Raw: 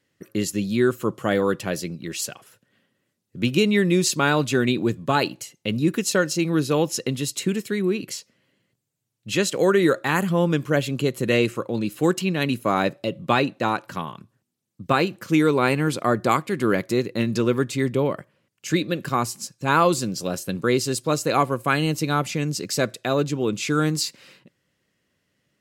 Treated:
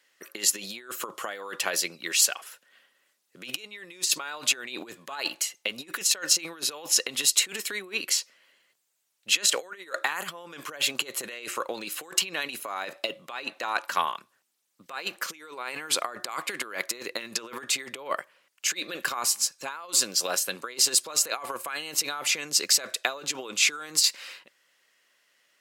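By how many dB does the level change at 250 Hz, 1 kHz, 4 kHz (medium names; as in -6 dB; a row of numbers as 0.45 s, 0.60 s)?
-22.5 dB, -9.0 dB, +3.5 dB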